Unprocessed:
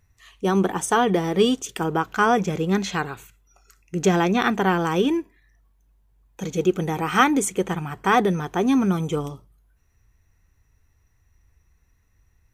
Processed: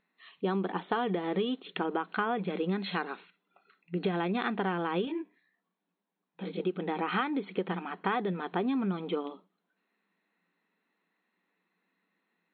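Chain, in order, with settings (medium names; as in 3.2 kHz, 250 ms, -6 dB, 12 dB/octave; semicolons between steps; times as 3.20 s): FFT band-pass 170–4300 Hz; compression 12:1, threshold -23 dBFS, peak gain reduction 12.5 dB; 5.05–6.60 s: detune thickener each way 45 cents; trim -3.5 dB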